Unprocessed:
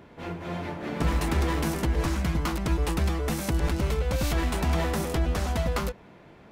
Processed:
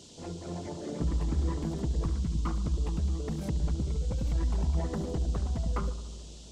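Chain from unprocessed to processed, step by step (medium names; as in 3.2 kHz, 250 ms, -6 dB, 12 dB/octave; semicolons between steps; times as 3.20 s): resonances exaggerated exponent 2; band noise 2.9–7.9 kHz -50 dBFS; on a send: filtered feedback delay 71 ms, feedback 80%, low-pass 1.6 kHz, level -13 dB; on the sum: trim -4.5 dB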